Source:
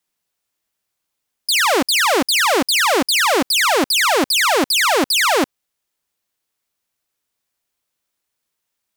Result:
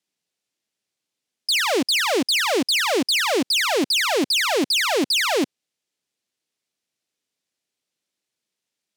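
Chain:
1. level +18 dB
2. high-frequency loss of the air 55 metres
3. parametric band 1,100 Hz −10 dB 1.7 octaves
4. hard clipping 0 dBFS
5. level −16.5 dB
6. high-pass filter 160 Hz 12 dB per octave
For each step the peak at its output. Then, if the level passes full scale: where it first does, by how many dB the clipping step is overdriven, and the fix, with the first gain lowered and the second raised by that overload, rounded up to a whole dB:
+8.0, +7.5, +6.5, 0.0, −16.5, −11.0 dBFS
step 1, 6.5 dB
step 1 +11 dB, step 5 −9.5 dB

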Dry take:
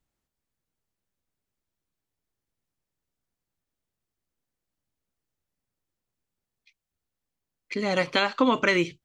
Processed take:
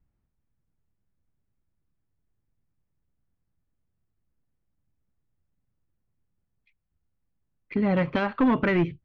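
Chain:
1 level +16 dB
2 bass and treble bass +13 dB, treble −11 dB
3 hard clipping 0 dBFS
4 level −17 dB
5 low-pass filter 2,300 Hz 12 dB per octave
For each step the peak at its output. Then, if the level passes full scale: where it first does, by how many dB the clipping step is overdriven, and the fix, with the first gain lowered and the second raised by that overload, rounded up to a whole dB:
+8.5, +8.0, 0.0, −17.0, −16.5 dBFS
step 1, 8.0 dB
step 1 +8 dB, step 4 −9 dB

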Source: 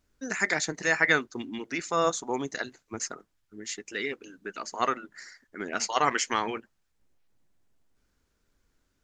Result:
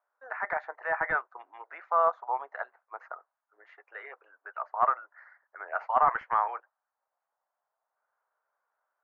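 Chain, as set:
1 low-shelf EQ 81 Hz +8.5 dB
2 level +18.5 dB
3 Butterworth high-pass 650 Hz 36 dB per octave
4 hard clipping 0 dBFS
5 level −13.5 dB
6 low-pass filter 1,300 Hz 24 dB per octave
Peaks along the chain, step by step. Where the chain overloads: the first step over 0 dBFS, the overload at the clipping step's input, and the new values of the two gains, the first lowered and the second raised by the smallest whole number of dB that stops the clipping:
−7.5, +11.0, +9.0, 0.0, −13.5, −12.0 dBFS
step 2, 9.0 dB
step 2 +9.5 dB, step 5 −4.5 dB

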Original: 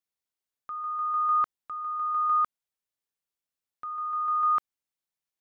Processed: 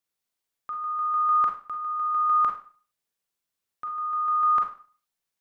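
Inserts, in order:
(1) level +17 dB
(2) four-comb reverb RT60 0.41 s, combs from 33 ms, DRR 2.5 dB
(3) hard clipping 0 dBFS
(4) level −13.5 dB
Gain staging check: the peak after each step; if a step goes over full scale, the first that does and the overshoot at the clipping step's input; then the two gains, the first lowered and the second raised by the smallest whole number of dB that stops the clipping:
−2.5, −3.0, −3.0, −16.5 dBFS
no step passes full scale

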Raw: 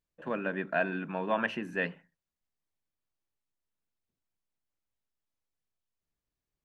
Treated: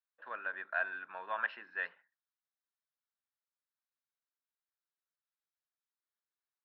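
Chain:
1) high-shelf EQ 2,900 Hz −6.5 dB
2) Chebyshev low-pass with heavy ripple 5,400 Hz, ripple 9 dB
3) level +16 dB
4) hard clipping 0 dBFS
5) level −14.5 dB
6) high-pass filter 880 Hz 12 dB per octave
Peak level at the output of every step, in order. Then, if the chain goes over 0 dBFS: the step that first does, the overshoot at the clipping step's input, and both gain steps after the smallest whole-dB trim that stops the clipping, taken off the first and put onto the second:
−16.5, −20.5, −4.5, −4.5, −19.0, −19.5 dBFS
no step passes full scale

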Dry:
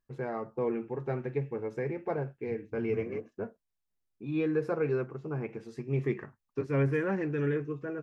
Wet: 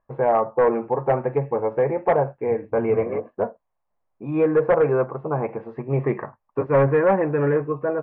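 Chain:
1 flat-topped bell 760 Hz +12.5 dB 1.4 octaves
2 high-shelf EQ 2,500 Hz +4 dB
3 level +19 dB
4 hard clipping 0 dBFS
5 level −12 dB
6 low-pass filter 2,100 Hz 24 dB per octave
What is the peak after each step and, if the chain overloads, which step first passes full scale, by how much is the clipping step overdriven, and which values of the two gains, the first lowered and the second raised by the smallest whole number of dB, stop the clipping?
−9.5, −9.0, +10.0, 0.0, −12.0, −10.5 dBFS
step 3, 10.0 dB
step 3 +9 dB, step 5 −2 dB

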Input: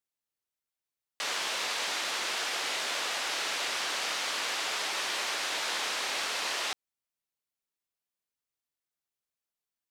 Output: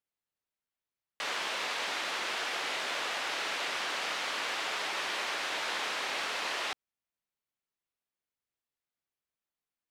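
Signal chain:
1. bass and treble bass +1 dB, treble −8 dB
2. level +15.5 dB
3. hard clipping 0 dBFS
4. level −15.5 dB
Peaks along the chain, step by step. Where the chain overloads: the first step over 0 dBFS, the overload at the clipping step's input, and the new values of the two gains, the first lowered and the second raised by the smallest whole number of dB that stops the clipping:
−21.0, −5.5, −5.5, −21.0 dBFS
no step passes full scale

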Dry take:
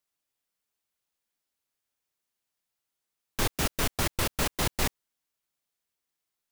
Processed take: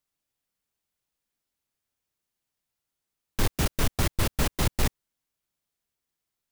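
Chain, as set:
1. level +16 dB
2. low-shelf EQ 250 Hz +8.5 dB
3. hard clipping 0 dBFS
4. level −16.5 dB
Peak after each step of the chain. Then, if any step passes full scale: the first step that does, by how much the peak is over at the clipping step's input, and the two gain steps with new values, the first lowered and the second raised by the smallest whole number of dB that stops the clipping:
+3.5, +7.5, 0.0, −16.5 dBFS
step 1, 7.5 dB
step 1 +8 dB, step 4 −8.5 dB

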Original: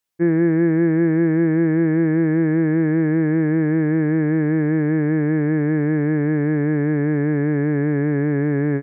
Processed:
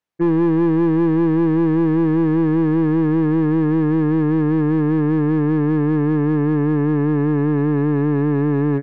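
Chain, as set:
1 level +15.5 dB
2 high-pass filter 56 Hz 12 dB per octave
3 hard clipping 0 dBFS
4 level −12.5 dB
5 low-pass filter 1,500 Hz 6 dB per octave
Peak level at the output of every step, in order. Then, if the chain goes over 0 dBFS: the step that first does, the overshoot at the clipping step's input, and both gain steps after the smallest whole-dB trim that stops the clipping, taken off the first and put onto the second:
+7.5, +7.5, 0.0, −12.5, −12.5 dBFS
step 1, 7.5 dB
step 1 +7.5 dB, step 4 −4.5 dB

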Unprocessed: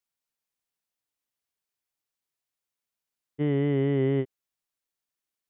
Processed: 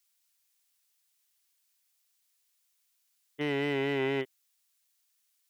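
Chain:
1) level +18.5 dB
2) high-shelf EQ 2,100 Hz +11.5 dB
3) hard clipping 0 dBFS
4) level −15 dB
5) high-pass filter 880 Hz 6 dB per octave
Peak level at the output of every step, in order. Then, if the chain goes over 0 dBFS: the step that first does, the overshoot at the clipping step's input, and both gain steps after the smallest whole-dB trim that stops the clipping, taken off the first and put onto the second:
+3.0, +4.0, 0.0, −15.0, −19.0 dBFS
step 1, 4.0 dB
step 1 +14.5 dB, step 4 −11 dB

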